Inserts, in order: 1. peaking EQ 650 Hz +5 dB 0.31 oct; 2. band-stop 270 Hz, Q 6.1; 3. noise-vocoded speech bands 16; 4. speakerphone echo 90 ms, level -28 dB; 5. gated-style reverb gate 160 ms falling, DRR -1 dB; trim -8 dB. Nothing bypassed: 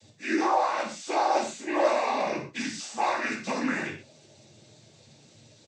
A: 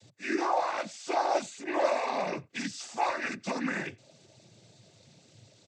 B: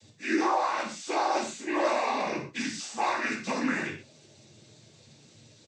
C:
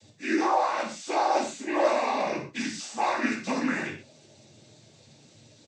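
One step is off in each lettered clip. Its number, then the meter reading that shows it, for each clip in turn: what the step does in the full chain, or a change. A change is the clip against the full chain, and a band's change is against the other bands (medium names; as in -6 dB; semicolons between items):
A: 5, 125 Hz band +2.5 dB; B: 1, 500 Hz band -3.0 dB; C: 2, 250 Hz band +1.5 dB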